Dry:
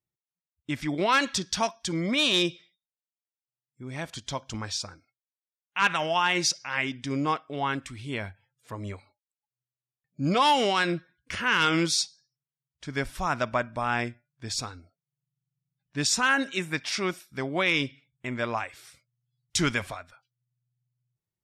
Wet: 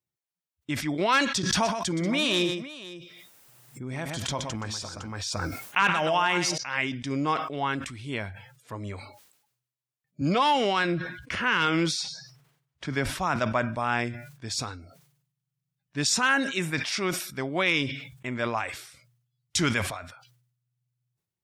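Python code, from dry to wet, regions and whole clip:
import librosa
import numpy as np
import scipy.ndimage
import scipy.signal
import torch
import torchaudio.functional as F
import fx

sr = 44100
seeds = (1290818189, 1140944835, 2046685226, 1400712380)

y = fx.chain(x, sr, fx.peak_eq(hz=4300.0, db=-4.5, octaves=1.6),
    fx.echo_multitap(ms=(122, 509), db=(-9.5, -16.5)),
    fx.pre_swell(db_per_s=21.0), at=(1.43, 6.58))
y = fx.chain(y, sr, fx.high_shelf(hz=5100.0, db=-9.5),
    fx.band_squash(depth_pct=40), at=(10.21, 13.36))
y = scipy.signal.sosfilt(scipy.signal.butter(2, 57.0, 'highpass', fs=sr, output='sos'), y)
y = fx.sustainer(y, sr, db_per_s=72.0)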